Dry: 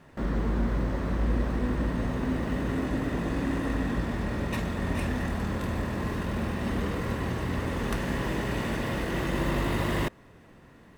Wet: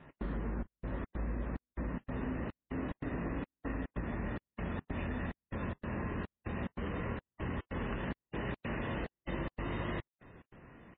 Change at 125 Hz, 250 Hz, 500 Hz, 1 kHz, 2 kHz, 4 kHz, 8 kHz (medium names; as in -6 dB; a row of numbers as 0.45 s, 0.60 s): -10.0 dB, -10.0 dB, -9.5 dB, -9.5 dB, -9.5 dB, -14.0 dB, under -35 dB